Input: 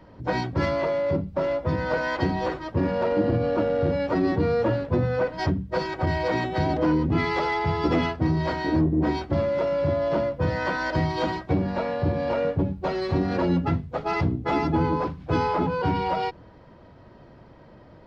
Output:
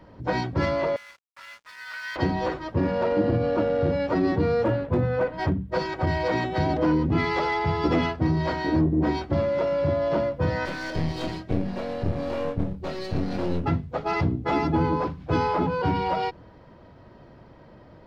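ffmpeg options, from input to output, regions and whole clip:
-filter_complex "[0:a]asettb=1/sr,asplit=3[a][b][c];[a]atrim=end=0.964[d];[b]atrim=start=0.96:end=2.16,asetpts=PTS-STARTPTS,afade=t=in:d=0.004:c=qsin,afade=t=out:st=1.196:d=0.004:c=qsin,highpass=f=1.5k:w=0.5412,highpass=f=1.5k:w=1.3066,aeval=exprs='sgn(val(0))*max(abs(val(0))-0.00282,0)':c=same[e];[c]atrim=start=2.156[f];[d][e]acrossfade=d=0.004:c1=hsin:c2=qsin[g];[g][f]acrossfade=d=0.004:c1=qsin:c2=hsin,asettb=1/sr,asplit=3[h][i][j];[h]atrim=end=4.644[k];[i]atrim=start=4.64:end=5.72,asetpts=PTS-STARTPTS,afade=t=in:d=0.004:c=qsin,afade=t=out:st=1.076:d=0.004:c=qsin,equalizer=f=5.6k:w=1.2:g=-9,asoftclip=type=hard:threshold=-15.5dB[l];[j]atrim=start=5.716[m];[k][l]acrossfade=d=0.004:c1=hsin:c2=qsin[n];[n][m]acrossfade=d=0.004:c1=qsin:c2=hsin,asettb=1/sr,asplit=3[o][p][q];[o]atrim=end=10.654[r];[p]atrim=start=10.65:end=13.66,asetpts=PTS-STARTPTS,afade=t=in:d=0.004:c=qsin,afade=t=out:st=3.006:d=0.004:c=qsin,equalizer=f=1k:t=o:w=1.4:g=-10.5,aeval=exprs='clip(val(0),-1,0.0188)':c=same,asplit=2[s][t];[t]adelay=25,volume=-6dB[u];[s][u]amix=inputs=2:normalize=0,atrim=end_sample=132741[v];[q]atrim=start=13.656[w];[r][v]acrossfade=d=0.004:c1=hsin:c2=qsin[x];[x][w]acrossfade=d=0.004:c1=qsin:c2=hsin"

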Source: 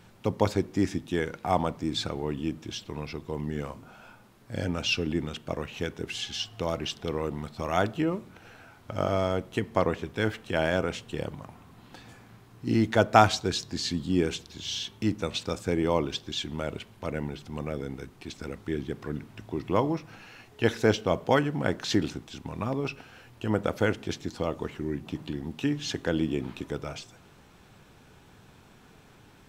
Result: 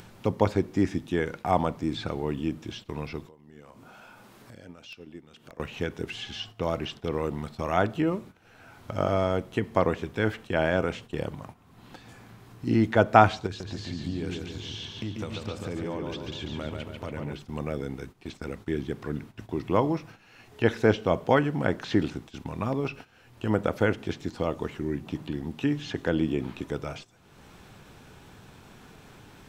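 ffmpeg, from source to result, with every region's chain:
-filter_complex "[0:a]asettb=1/sr,asplit=3[a][b][c];[a]atrim=end=3.264[d];[b]atrim=start=3.26:end=5.6,asetpts=PTS-STARTPTS,afade=t=in:d=0.004:c=qsin,afade=t=out:st=2.336:d=0.004:c=qsin,lowshelf=f=110:g=-11,acompressor=threshold=-51dB:ratio=2.5:attack=3.2:release=140:knee=1:detection=peak,aeval=exprs='(mod(44.7*val(0)+1,2)-1)/44.7':c=same[e];[c]atrim=start=5.596[f];[d][e]acrossfade=d=0.004:c1=hsin:c2=qsin[g];[g][f]acrossfade=d=0.004:c1=qsin:c2=hsin,asettb=1/sr,asplit=3[h][i][j];[h]atrim=end=13.464[k];[i]atrim=start=13.46:end=17.33,asetpts=PTS-STARTPTS,afade=t=in:d=0.004:c=qsin,afade=t=out:st=3.866:d=0.004:c=qsin,equalizer=f=100:t=o:w=0.35:g=8.5,acompressor=threshold=-31dB:ratio=6:attack=3.2:release=140:knee=1:detection=peak,asplit=2[l][m];[m]adelay=141,lowpass=f=3.2k:p=1,volume=-3dB,asplit=2[n][o];[o]adelay=141,lowpass=f=3.2k:p=1,volume=0.54,asplit=2[p][q];[q]adelay=141,lowpass=f=3.2k:p=1,volume=0.54,asplit=2[r][s];[s]adelay=141,lowpass=f=3.2k:p=1,volume=0.54,asplit=2[t][u];[u]adelay=141,lowpass=f=3.2k:p=1,volume=0.54,asplit=2[v][w];[w]adelay=141,lowpass=f=3.2k:p=1,volume=0.54,asplit=2[x][y];[y]adelay=141,lowpass=f=3.2k:p=1,volume=0.54[z];[l][n][p][r][t][v][x][z]amix=inputs=8:normalize=0,atrim=end_sample=170667[aa];[j]atrim=start=17.326[ab];[k][aa]acrossfade=d=0.004:c1=hsin:c2=qsin[ac];[ac][ab]acrossfade=d=0.004:c1=qsin:c2=hsin,acrossover=split=3000[ad][ae];[ae]acompressor=threshold=-49dB:ratio=4:attack=1:release=60[af];[ad][af]amix=inputs=2:normalize=0,agate=range=-14dB:threshold=-44dB:ratio=16:detection=peak,acompressor=mode=upward:threshold=-36dB:ratio=2.5,volume=1.5dB"

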